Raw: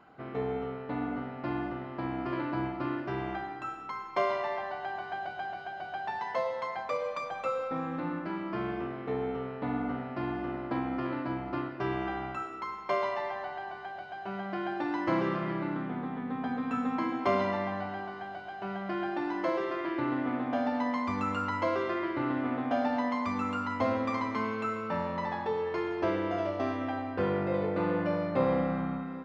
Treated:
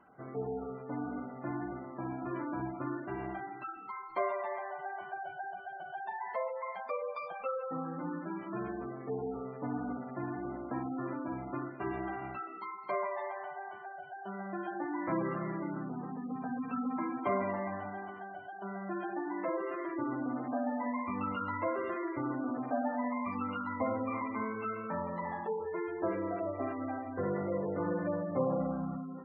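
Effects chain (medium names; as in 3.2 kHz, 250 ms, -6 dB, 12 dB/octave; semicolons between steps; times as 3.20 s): flange 1.6 Hz, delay 3.1 ms, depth 4.7 ms, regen -55%; spectral gate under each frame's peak -20 dB strong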